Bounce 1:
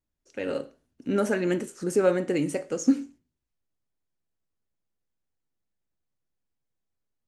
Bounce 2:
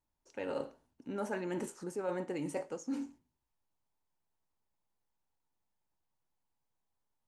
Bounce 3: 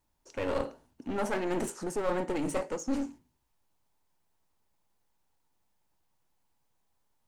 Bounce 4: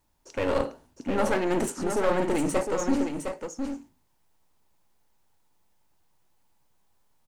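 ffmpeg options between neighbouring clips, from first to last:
-af "areverse,acompressor=threshold=-33dB:ratio=8,areverse,equalizer=f=900:w=2.6:g=13.5,volume=-2.5dB"
-af "aeval=exprs='clip(val(0),-1,0.00668)':c=same,volume=9dB"
-af "aecho=1:1:709:0.473,volume=5.5dB"

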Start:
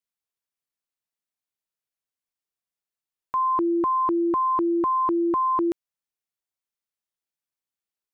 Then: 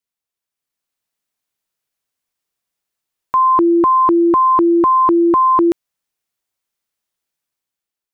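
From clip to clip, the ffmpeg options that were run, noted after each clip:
-af "dynaudnorm=f=210:g=7:m=7dB,volume=3.5dB"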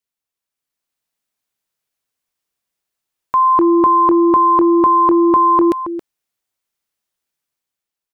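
-filter_complex "[0:a]asplit=2[a][b];[b]adelay=274.1,volume=-11dB,highshelf=f=4k:g=-6.17[c];[a][c]amix=inputs=2:normalize=0"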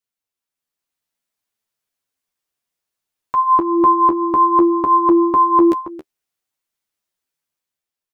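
-af "flanger=delay=8.8:depth=4.7:regen=15:speed=0.59:shape=triangular,volume=1.5dB"

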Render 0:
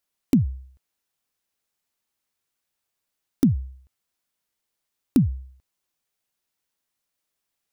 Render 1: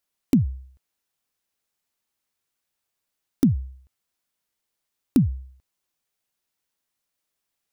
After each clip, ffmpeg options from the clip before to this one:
-af anull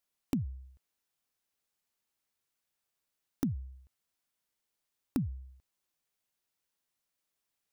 -af "acompressor=threshold=-33dB:ratio=2,volume=-4dB"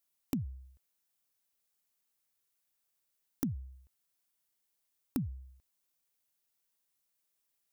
-af "crystalizer=i=1:c=0,volume=-2.5dB"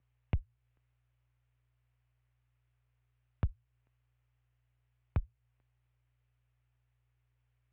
-af "aeval=exprs='val(0)+0.000447*(sin(2*PI*60*n/s)+sin(2*PI*2*60*n/s)/2+sin(2*PI*3*60*n/s)/3+sin(2*PI*4*60*n/s)/4+sin(2*PI*5*60*n/s)/5)':c=same,highpass=f=220:t=q:w=0.5412,highpass=f=220:t=q:w=1.307,lowpass=f=3k:t=q:w=0.5176,lowpass=f=3k:t=q:w=0.7071,lowpass=f=3k:t=q:w=1.932,afreqshift=-180,volume=5dB"

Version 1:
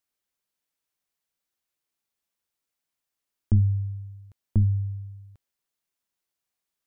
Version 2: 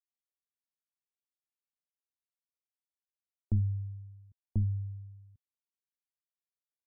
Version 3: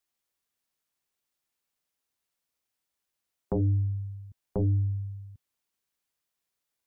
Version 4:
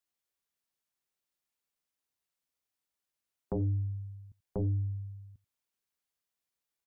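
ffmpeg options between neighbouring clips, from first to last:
-af "afftdn=nr=20:nf=-48,volume=-8.5dB"
-af "aeval=exprs='0.1*sin(PI/2*2.82*val(0)/0.1)':c=same,volume=-1.5dB"
-af "aecho=1:1:86:0.0631,volume=-5dB"

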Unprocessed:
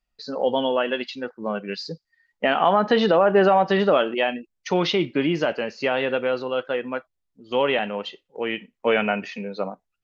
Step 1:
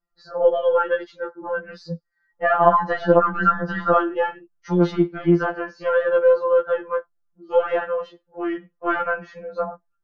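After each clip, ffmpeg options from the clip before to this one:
-af "aeval=exprs='0.501*(cos(1*acos(clip(val(0)/0.501,-1,1)))-cos(1*PI/2))+0.0355*(cos(2*acos(clip(val(0)/0.501,-1,1)))-cos(2*PI/2))':c=same,highshelf=f=1.9k:t=q:w=3:g=-9.5,afftfilt=real='re*2.83*eq(mod(b,8),0)':imag='im*2.83*eq(mod(b,8),0)':win_size=2048:overlap=0.75,volume=2.5dB"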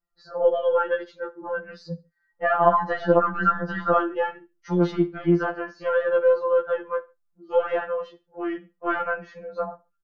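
-af "aecho=1:1:69|138:0.0794|0.023,volume=-3dB"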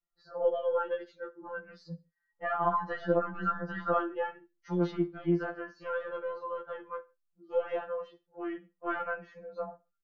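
-af "flanger=delay=5.7:depth=1.1:regen=-44:speed=0.23:shape=sinusoidal,volume=-5.5dB"

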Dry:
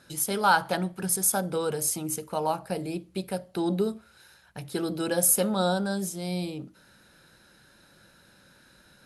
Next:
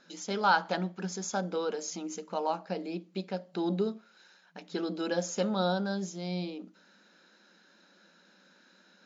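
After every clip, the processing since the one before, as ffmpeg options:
-af "afftfilt=real='re*between(b*sr/4096,170,7300)':imag='im*between(b*sr/4096,170,7300)':win_size=4096:overlap=0.75,volume=-3.5dB"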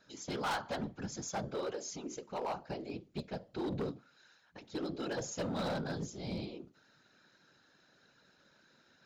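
-af "afftfilt=real='hypot(re,im)*cos(2*PI*random(0))':imag='hypot(re,im)*sin(2*PI*random(1))':win_size=512:overlap=0.75,volume=33dB,asoftclip=hard,volume=-33dB,volume=1dB"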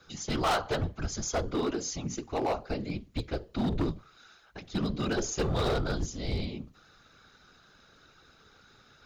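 -af "afreqshift=-120,volume=8dB"

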